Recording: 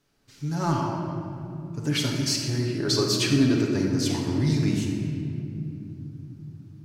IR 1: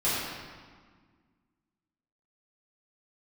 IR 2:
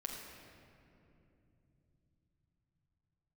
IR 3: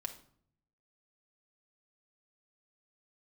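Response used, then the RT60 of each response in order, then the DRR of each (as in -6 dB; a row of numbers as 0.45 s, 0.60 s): 2; 1.6 s, 2.8 s, 0.60 s; -12.0 dB, -1.5 dB, 3.0 dB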